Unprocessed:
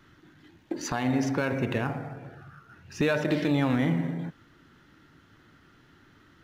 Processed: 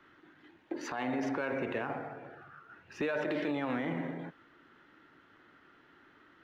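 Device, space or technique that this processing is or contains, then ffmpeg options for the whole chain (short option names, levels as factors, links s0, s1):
DJ mixer with the lows and highs turned down: -filter_complex "[0:a]acrossover=split=280 3200:gain=0.158 1 0.178[s0][s1][s2];[s0][s1][s2]amix=inputs=3:normalize=0,alimiter=level_in=1.12:limit=0.0631:level=0:latency=1:release=37,volume=0.891"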